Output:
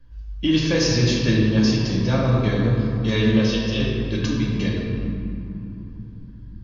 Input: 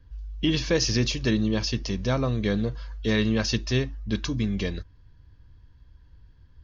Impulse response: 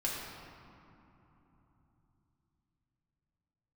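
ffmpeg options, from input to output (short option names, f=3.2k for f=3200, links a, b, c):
-filter_complex "[0:a]asettb=1/sr,asplit=3[a][b][c];[a]atrim=end=3.374[d];[b]atrim=start=3.37:end=3.8,asetpts=PTS-STARTPTS,afade=t=in:d=0.004:c=qsin,afade=t=out:st=0.426:d=0.004:c=qsin,highpass=f=420:w=0.5412,highpass=f=420:w=1.3066,equalizer=f=480:t=q:w=4:g=8,equalizer=f=820:t=q:w=4:g=-9,equalizer=f=1.4k:t=q:w=4:g=-7,equalizer=f=2k:t=q:w=4:g=-10,equalizer=f=3.1k:t=q:w=4:g=7,equalizer=f=4.5k:t=q:w=4:g=-5,lowpass=f=5.4k:w=0.5412,lowpass=f=5.4k:w=1.3066[e];[c]atrim=start=3.796[f];[d][e]acrossfade=d=0.004:c1=hsin:c2=qsin[g];[g][f]acrossfade=d=0.004:c1=qsin:c2=hsin[h];[1:a]atrim=start_sample=2205[i];[h][i]afir=irnorm=-1:irlink=0"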